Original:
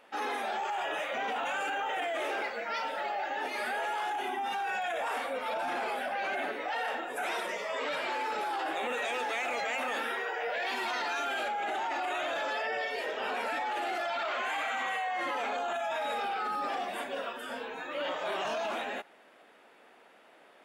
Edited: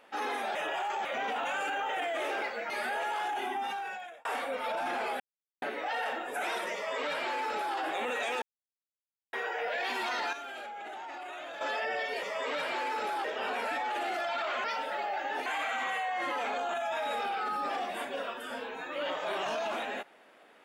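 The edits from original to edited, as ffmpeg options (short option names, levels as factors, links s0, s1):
-filter_complex "[0:a]asplit=15[s0][s1][s2][s3][s4][s5][s6][s7][s8][s9][s10][s11][s12][s13][s14];[s0]atrim=end=0.552[s15];[s1]atrim=start=0.548:end=1.052,asetpts=PTS-STARTPTS,areverse[s16];[s2]atrim=start=1.048:end=2.702[s17];[s3]atrim=start=3.518:end=5.07,asetpts=PTS-STARTPTS,afade=t=out:st=0.882:d=0.67[s18];[s4]atrim=start=5.07:end=6.02,asetpts=PTS-STARTPTS,afade=t=in:d=0.004:c=hsin,afade=t=out:st=0.946:d=0.004:c=hsin[s19];[s5]atrim=start=6.02:end=6.44,asetpts=PTS-STARTPTS,volume=0[s20];[s6]atrim=start=6.44:end=9.24,asetpts=PTS-STARTPTS,afade=t=in:d=0.004:c=hsin,afade=t=out:st=2.796:d=0.004:c=hsin[s21];[s7]atrim=start=9.24:end=10.15,asetpts=PTS-STARTPTS,volume=0[s22];[s8]atrim=start=10.15:end=11.152,asetpts=PTS-STARTPTS,afade=t=in:d=0.004:c=hsin[s23];[s9]atrim=start=11.148:end=12.432,asetpts=PTS-STARTPTS,volume=0.355[s24];[s10]atrim=start=12.428:end=13.052[s25];[s11]atrim=start=7.568:end=8.582[s26];[s12]atrim=start=13.048:end=14.452[s27];[s13]atrim=start=2.698:end=3.522[s28];[s14]atrim=start=14.448[s29];[s15][s16]acrossfade=d=0.004:c1=hsin:c2=hsin[s30];[s30][s17]acrossfade=d=0.004:c1=hsin:c2=hsin[s31];[s18][s19][s20][s21][s22][s23]concat=n=6:v=0:a=1[s32];[s31][s32]acrossfade=d=0.004:c1=hsin:c2=hsin[s33];[s33][s24]acrossfade=d=0.004:c1=hsin:c2=hsin[s34];[s34][s25]acrossfade=d=0.004:c1=hsin:c2=hsin[s35];[s35][s26]acrossfade=d=0.004:c1=hsin:c2=hsin[s36];[s36][s27]acrossfade=d=0.004:c1=hsin:c2=hsin[s37];[s37][s28]acrossfade=d=0.004:c1=hsin:c2=hsin[s38];[s38][s29]acrossfade=d=0.004:c1=hsin:c2=hsin"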